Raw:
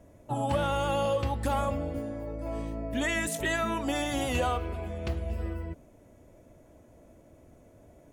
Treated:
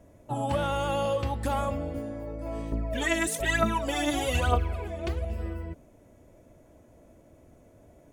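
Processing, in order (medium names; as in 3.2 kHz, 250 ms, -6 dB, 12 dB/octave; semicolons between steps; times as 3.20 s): 2.72–5.25 s: phaser 1.1 Hz, delay 3.4 ms, feedback 67%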